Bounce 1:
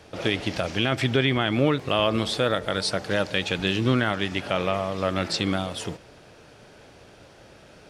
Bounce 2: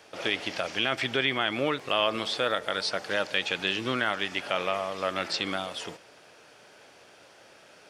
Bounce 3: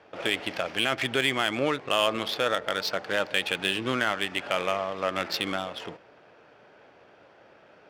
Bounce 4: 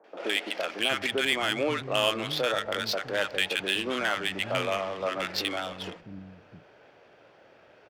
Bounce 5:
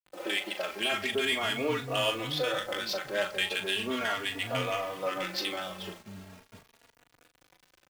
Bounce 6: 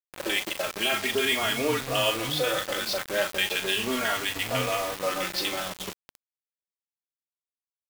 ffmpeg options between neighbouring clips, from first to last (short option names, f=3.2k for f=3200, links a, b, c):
-filter_complex "[0:a]highpass=f=750:p=1,acrossover=split=6000[a][b];[b]acompressor=threshold=-50dB:ratio=4:attack=1:release=60[c];[a][c]amix=inputs=2:normalize=0,equalizer=f=3.9k:w=6.7:g=-3"
-af "adynamicsmooth=sensitivity=4.5:basefreq=2.1k,volume=1.5dB"
-filter_complex "[0:a]acrossover=split=220|1100[a][b][c];[c]adelay=40[d];[a]adelay=660[e];[e][b][d]amix=inputs=3:normalize=0"
-filter_complex "[0:a]acrusher=bits=7:mix=0:aa=0.000001,asplit=2[a][b];[b]adelay=39,volume=-9dB[c];[a][c]amix=inputs=2:normalize=0,asplit=2[d][e];[e]adelay=3.5,afreqshift=0.39[f];[d][f]amix=inputs=2:normalize=1"
-af "acrusher=bits=5:mix=0:aa=0.000001,volume=3.5dB"